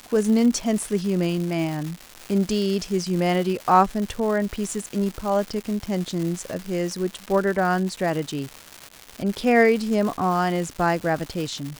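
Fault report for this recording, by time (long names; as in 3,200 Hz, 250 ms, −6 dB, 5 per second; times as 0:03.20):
surface crackle 380 per second −28 dBFS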